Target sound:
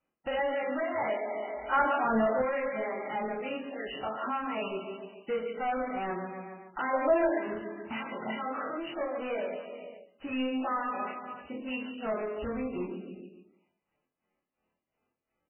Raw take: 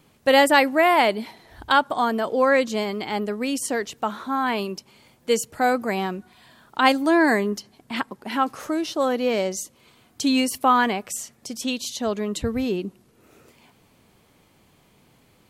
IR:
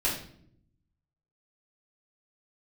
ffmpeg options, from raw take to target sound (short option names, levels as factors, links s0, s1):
-filter_complex "[0:a]agate=range=0.0282:threshold=0.00562:ratio=16:detection=peak,tremolo=f=2.8:d=0.91,aecho=1:1:142|284|426|568:0.224|0.0985|0.0433|0.0191[s0];[1:a]atrim=start_sample=2205,asetrate=88200,aresample=44100[s1];[s0][s1]afir=irnorm=-1:irlink=0,asoftclip=type=tanh:threshold=0.794,acompressor=threshold=0.0112:ratio=2,asplit=2[s2][s3];[s3]highpass=f=720:p=1,volume=12.6,asoftclip=type=tanh:threshold=0.106[s4];[s2][s4]amix=inputs=2:normalize=0,lowpass=f=3600:p=1,volume=0.501,asettb=1/sr,asplit=3[s5][s6][s7];[s5]atrim=end=8.954[s8];[s6]atrim=start=8.95:end=10.22,asetpts=PTS-STARTPTS,afade=t=in:d=0.004:c=qsin,afade=t=out:st=1.266:d=0.004:c=qsin,equalizer=f=120:w=0.65:g=-6[s9];[s7]atrim=start=10.216[s10];[s8][s9]acrossfade=d=0.004:c1=hsin:c2=qsin[s11];[s11][s10]acrossfade=d=0.004:c1=qsin:c2=hsin,asplit=2[s12][s13];[s13]adelay=23,volume=0.422[s14];[s12][s14]amix=inputs=2:normalize=0,asettb=1/sr,asplit=3[s15][s16][s17];[s15]atrim=end=1.724[s18];[s16]atrim=start=1.72:end=2.42,asetpts=PTS-STARTPTS,afade=t=in:d=0.004:c=qsin,afade=t=out:st=0.696:d=0.004:c=qsin,acontrast=37[s19];[s17]atrim=start=2.416[s20];[s18][s19]acrossfade=d=0.004:c1=hsin:c2=qsin[s21];[s21][s20]acrossfade=d=0.004:c1=qsin:c2=hsin,asettb=1/sr,asplit=3[s22][s23][s24];[s22]atrim=end=6.934[s25];[s23]atrim=start=6.93:end=7.38,asetpts=PTS-STARTPTS,afade=t=in:d=0.004:c=qsin,afade=t=out:st=0.446:d=0.004:c=qsin,equalizer=f=580:w=2.8:g=14.5[s26];[s24]atrim=start=7.376[s27];[s25][s26]acrossfade=d=0.004:c1=hsin:c2=qsin[s28];[s28][s27]acrossfade=d=0.004:c1=qsin:c2=hsin,volume=0.501" -ar 12000 -c:a libmp3lame -b:a 8k